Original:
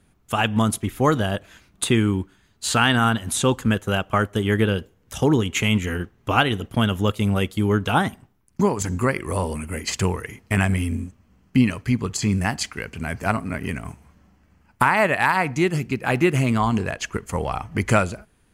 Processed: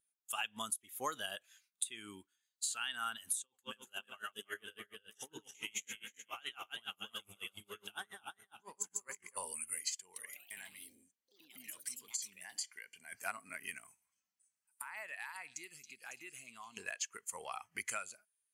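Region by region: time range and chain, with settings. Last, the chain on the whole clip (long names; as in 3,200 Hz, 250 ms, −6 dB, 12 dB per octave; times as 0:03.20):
0:03.42–0:09.37: feedback delay that plays each chunk backwards 161 ms, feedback 64%, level −2 dB + flanger 1.1 Hz, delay 2.9 ms, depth 9.6 ms, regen −79% + tremolo with a sine in dB 7.2 Hz, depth 25 dB
0:09.96–0:13.12: downward compressor, threshold −28 dBFS + notch comb filter 1,300 Hz + delay with pitch and tempo change per echo 175 ms, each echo +4 semitones, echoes 3, each echo −6 dB
0:13.84–0:16.77: downward compressor 3 to 1, threshold −32 dBFS + echo through a band-pass that steps 276 ms, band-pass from 4,200 Hz, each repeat 0.7 octaves, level −3 dB
whole clip: first difference; downward compressor 20 to 1, threshold −36 dBFS; every bin expanded away from the loudest bin 1.5 to 1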